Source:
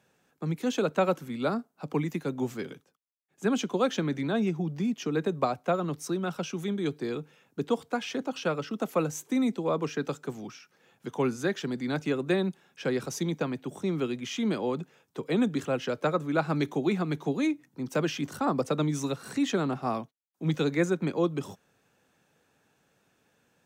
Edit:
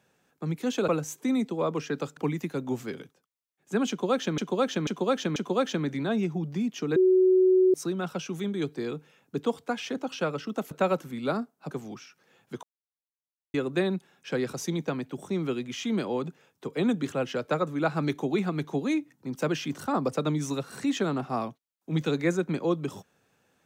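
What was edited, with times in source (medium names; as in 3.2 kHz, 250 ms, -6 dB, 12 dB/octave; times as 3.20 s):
0.88–1.88 s: swap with 8.95–10.24 s
3.60–4.09 s: loop, 4 plays
5.20–5.98 s: bleep 372 Hz -16.5 dBFS
11.16–12.07 s: mute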